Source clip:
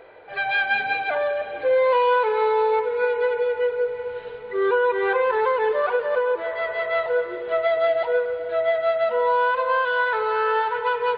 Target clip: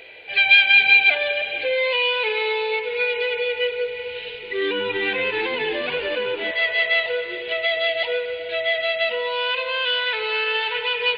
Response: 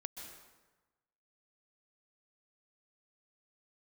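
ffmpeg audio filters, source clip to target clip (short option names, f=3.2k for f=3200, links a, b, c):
-filter_complex "[0:a]asettb=1/sr,asplit=3[a][b][c];[a]atrim=end=4.344[d];[b]atrim=start=4.34:end=6.51,asetpts=PTS-STARTPTS,afade=t=in:d=0.004:c=qsin,afade=t=out:st=2.166:d=0.004:c=qsin,asplit=6[e][f][g][h][i][j];[f]adelay=85,afreqshift=-93,volume=-9dB[k];[g]adelay=170,afreqshift=-186,volume=-15.7dB[l];[h]adelay=255,afreqshift=-279,volume=-22.5dB[m];[i]adelay=340,afreqshift=-372,volume=-29.2dB[n];[j]adelay=425,afreqshift=-465,volume=-36dB[o];[e][k][l][m][n][o]amix=inputs=6:normalize=0,atrim=end_sample=95697[p];[c]atrim=start=6.506[q];[d][p]acrossfade=d=0.004:c1=hsin:c2=qsin[r];[r][q]acrossfade=d=0.004:c1=qsin:c2=hsin,alimiter=limit=-16dB:level=0:latency=1:release=124,highshelf=f=1.8k:t=q:w=3:g=13,volume=-1dB"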